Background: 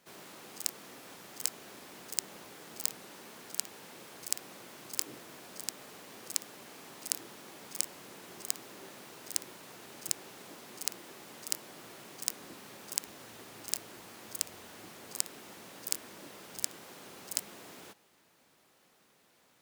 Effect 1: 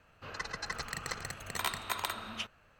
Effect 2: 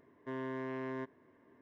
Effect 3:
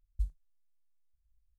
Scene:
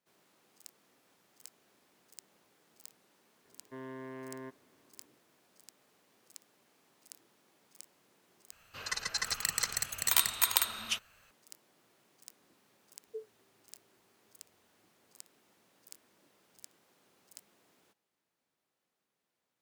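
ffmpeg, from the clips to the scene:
ffmpeg -i bed.wav -i cue0.wav -i cue1.wav -i cue2.wav -filter_complex "[0:a]volume=-19dB[link_01];[1:a]crystalizer=i=7:c=0[link_02];[3:a]afreqshift=390[link_03];[link_01]asplit=2[link_04][link_05];[link_04]atrim=end=8.524[link_06];[link_02]atrim=end=2.79,asetpts=PTS-STARTPTS,volume=-5.5dB[link_07];[link_05]atrim=start=11.306[link_08];[2:a]atrim=end=1.61,asetpts=PTS-STARTPTS,volume=-5dB,afade=type=in:duration=0.004:curve=hsin,afade=type=out:start_time=1.606:duration=0.004:curve=hsin,adelay=152145S[link_09];[link_03]atrim=end=1.58,asetpts=PTS-STARTPTS,volume=-12dB,afade=type=in:duration=0.004:curve=hsin,afade=type=out:start_time=1.576:duration=0.004:curve=hsin,adelay=12940[link_10];[link_06][link_07]acrossfade=duration=0.004:curve1=hsin:curve2=hsin[link_11];[link_11][link_08]acrossfade=duration=0.004:curve1=hsin:curve2=hsin[link_12];[link_12][link_09][link_10]amix=inputs=3:normalize=0" out.wav

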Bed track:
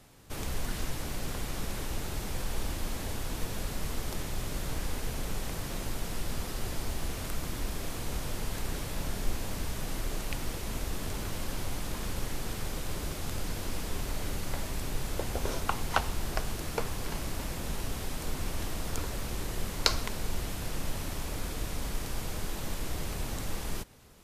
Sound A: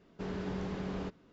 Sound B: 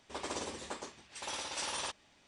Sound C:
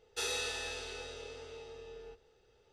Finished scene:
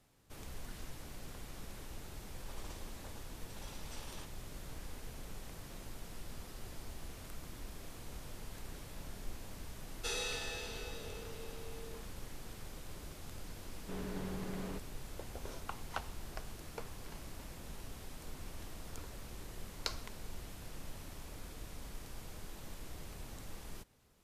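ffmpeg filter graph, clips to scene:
ffmpeg -i bed.wav -i cue0.wav -i cue1.wav -i cue2.wav -filter_complex "[0:a]volume=-13dB[link_01];[2:a]atrim=end=2.27,asetpts=PTS-STARTPTS,volume=-15dB,afade=type=in:duration=0.004:curve=hsin,afade=type=out:start_time=2.266:duration=0.004:curve=hsin,adelay=2340[link_02];[3:a]atrim=end=2.72,asetpts=PTS-STARTPTS,volume=-3dB,afade=type=in:duration=0.004:curve=hsin,afade=type=out:start_time=2.716:duration=0.004:curve=hsin,adelay=9870[link_03];[1:a]atrim=end=1.32,asetpts=PTS-STARTPTS,volume=-5dB,afade=type=in:duration=0.004:curve=hsin,afade=type=out:start_time=1.316:duration=0.004:curve=hsin,adelay=13690[link_04];[link_01][link_02][link_03][link_04]amix=inputs=4:normalize=0" out.wav

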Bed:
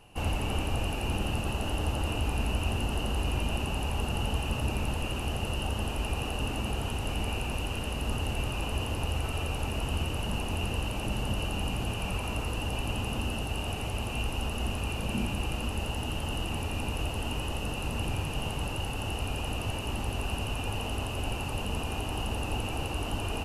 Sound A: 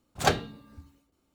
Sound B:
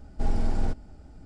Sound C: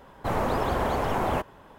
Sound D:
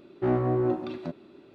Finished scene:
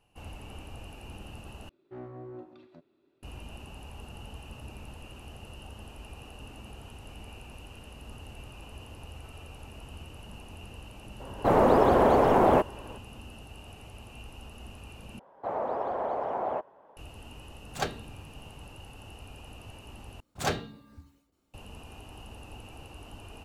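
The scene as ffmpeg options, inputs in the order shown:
ffmpeg -i bed.wav -i cue0.wav -i cue1.wav -i cue2.wav -i cue3.wav -filter_complex "[3:a]asplit=2[link_01][link_02];[1:a]asplit=2[link_03][link_04];[0:a]volume=-14dB[link_05];[4:a]equalizer=frequency=200:width=5.1:gain=-8[link_06];[link_01]equalizer=frequency=420:width=0.4:gain=12.5[link_07];[link_02]bandpass=frequency=650:width_type=q:width=1.8:csg=0[link_08];[link_04]asoftclip=type=tanh:threshold=-18.5dB[link_09];[link_05]asplit=4[link_10][link_11][link_12][link_13];[link_10]atrim=end=1.694[link_14];[link_06]atrim=end=1.54,asetpts=PTS-STARTPTS,volume=-18dB[link_15];[link_11]atrim=start=3.226:end=15.194[link_16];[link_08]atrim=end=1.78,asetpts=PTS-STARTPTS,volume=-1dB[link_17];[link_12]atrim=start=16.966:end=20.204[link_18];[link_09]atrim=end=1.34,asetpts=PTS-STARTPTS,volume=-2dB[link_19];[link_13]atrim=start=21.536[link_20];[link_07]atrim=end=1.78,asetpts=PTS-STARTPTS,volume=-4dB,afade=type=in:duration=0.004:curve=hsin,afade=type=out:start_time=1.776:duration=0.004:curve=hsin,adelay=11200[link_21];[link_03]atrim=end=1.34,asetpts=PTS-STARTPTS,volume=-8dB,afade=type=in:duration=0.004:curve=hsin,afade=type=out:start_time=1.336:duration=0.004:curve=hsin,adelay=17550[link_22];[link_14][link_15]acrossfade=duration=0.004:curve1=hsin:curve2=hsin[link_23];[link_23][link_16]acrossfade=duration=0.004:curve1=hsin:curve2=hsin[link_24];[link_24][link_17]acrossfade=duration=0.004:curve1=hsin:curve2=hsin[link_25];[link_25][link_18]acrossfade=duration=0.004:curve1=hsin:curve2=hsin[link_26];[link_26][link_19]acrossfade=duration=0.004:curve1=hsin:curve2=hsin[link_27];[link_27][link_20]acrossfade=duration=0.004:curve1=hsin:curve2=hsin[link_28];[link_28][link_21][link_22]amix=inputs=3:normalize=0" out.wav

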